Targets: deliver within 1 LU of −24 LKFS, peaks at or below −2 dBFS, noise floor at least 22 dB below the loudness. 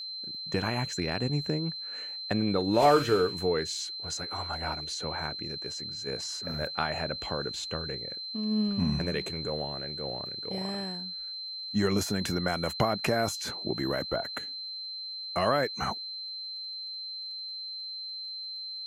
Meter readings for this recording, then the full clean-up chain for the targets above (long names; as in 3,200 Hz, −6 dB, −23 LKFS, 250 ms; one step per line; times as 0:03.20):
crackle rate 27 per second; interfering tone 4,100 Hz; level of the tone −36 dBFS; integrated loudness −31.0 LKFS; sample peak −10.0 dBFS; target loudness −24.0 LKFS
→ click removal
notch filter 4,100 Hz, Q 30
level +7 dB